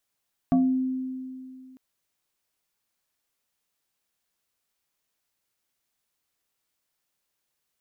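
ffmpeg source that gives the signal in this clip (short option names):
-f lavfi -i "aevalsrc='0.158*pow(10,-3*t/2.44)*sin(2*PI*259*t+0.86*pow(10,-3*t/0.4)*sin(2*PI*1.69*259*t))':d=1.25:s=44100"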